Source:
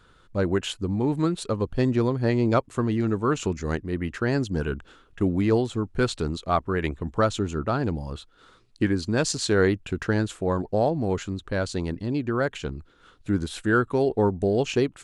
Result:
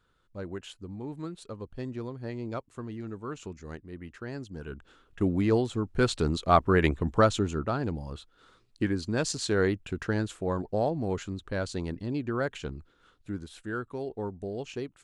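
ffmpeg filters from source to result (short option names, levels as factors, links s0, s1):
-af "volume=1.5,afade=t=in:st=4.61:d=0.63:silence=0.281838,afade=t=in:st=5.85:d=0.91:silence=0.473151,afade=t=out:st=6.76:d=1:silence=0.375837,afade=t=out:st=12.76:d=0.67:silence=0.398107"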